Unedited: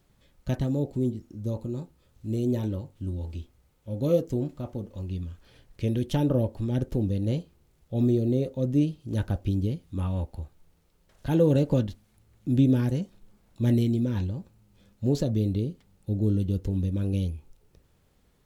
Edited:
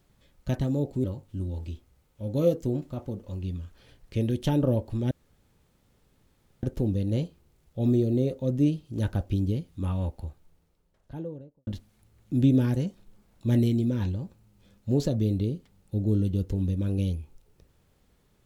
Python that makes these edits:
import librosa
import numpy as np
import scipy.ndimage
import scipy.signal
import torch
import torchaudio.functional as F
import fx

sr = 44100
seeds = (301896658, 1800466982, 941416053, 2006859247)

y = fx.studio_fade_out(x, sr, start_s=10.32, length_s=1.5)
y = fx.edit(y, sr, fx.cut(start_s=1.04, length_s=1.67),
    fx.insert_room_tone(at_s=6.78, length_s=1.52), tone=tone)